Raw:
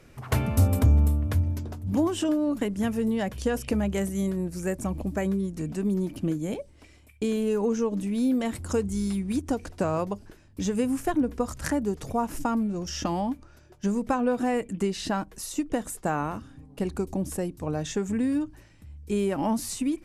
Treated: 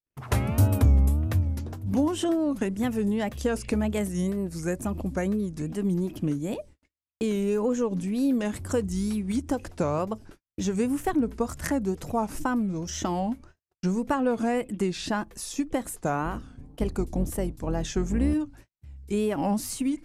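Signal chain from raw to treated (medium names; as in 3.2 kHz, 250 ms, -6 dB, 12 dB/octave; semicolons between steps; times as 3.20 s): 16.24–18.34 s: octave divider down 2 oct, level 0 dB; wow and flutter 150 cents; gate -47 dBFS, range -49 dB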